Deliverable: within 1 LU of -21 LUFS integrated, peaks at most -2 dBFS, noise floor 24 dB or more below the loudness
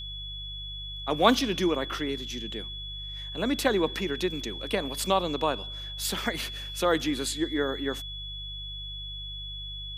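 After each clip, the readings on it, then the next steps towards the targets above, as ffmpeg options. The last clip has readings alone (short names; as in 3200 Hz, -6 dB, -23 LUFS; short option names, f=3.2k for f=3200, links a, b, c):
hum 50 Hz; harmonics up to 150 Hz; hum level -39 dBFS; steady tone 3400 Hz; tone level -37 dBFS; loudness -29.5 LUFS; peak -5.5 dBFS; loudness target -21.0 LUFS
-> -af "bandreject=f=50:t=h:w=4,bandreject=f=100:t=h:w=4,bandreject=f=150:t=h:w=4"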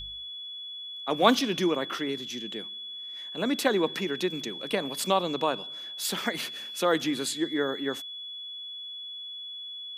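hum none; steady tone 3400 Hz; tone level -37 dBFS
-> -af "bandreject=f=3.4k:w=30"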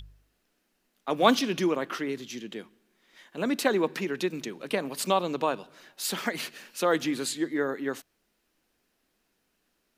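steady tone none; loudness -29.0 LUFS; peak -5.5 dBFS; loudness target -21.0 LUFS
-> -af "volume=8dB,alimiter=limit=-2dB:level=0:latency=1"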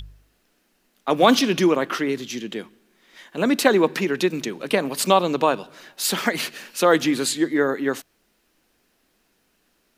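loudness -21.5 LUFS; peak -2.0 dBFS; noise floor -67 dBFS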